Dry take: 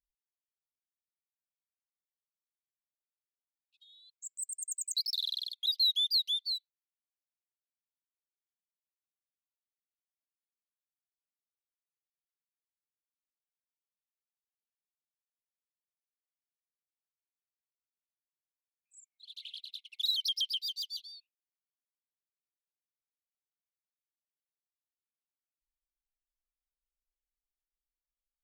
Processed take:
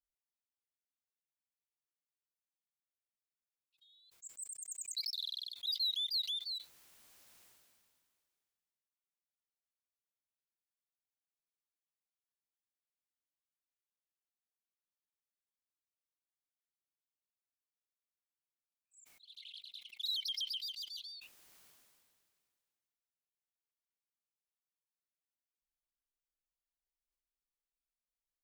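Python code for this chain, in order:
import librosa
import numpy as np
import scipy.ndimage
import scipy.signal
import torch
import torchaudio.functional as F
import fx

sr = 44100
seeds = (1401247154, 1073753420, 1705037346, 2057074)

y = fx.sustainer(x, sr, db_per_s=27.0)
y = y * 10.0 ** (-7.5 / 20.0)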